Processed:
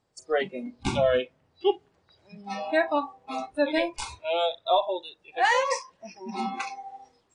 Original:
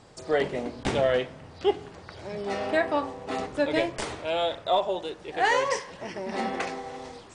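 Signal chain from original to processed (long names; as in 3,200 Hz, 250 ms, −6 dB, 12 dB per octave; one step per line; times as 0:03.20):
noise reduction from a noise print of the clip's start 23 dB
level +1.5 dB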